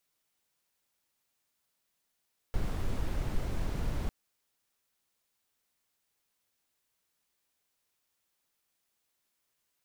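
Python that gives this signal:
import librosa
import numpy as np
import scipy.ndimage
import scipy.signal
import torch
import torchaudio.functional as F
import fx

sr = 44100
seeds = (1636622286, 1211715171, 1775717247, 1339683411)

y = fx.noise_colour(sr, seeds[0], length_s=1.55, colour='brown', level_db=-30.5)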